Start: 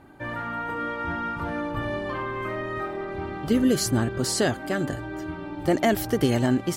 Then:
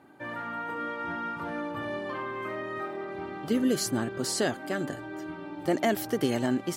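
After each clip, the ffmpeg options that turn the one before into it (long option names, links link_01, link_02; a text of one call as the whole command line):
ffmpeg -i in.wav -af "highpass=170,volume=-4dB" out.wav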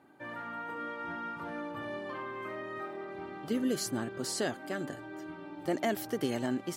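ffmpeg -i in.wav -af "lowshelf=frequency=60:gain=-7,volume=-5dB" out.wav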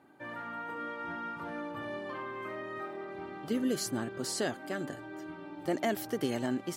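ffmpeg -i in.wav -af anull out.wav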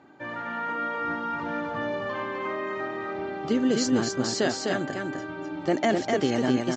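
ffmpeg -i in.wav -af "aecho=1:1:253:0.668,aresample=16000,aresample=44100,volume=7dB" out.wav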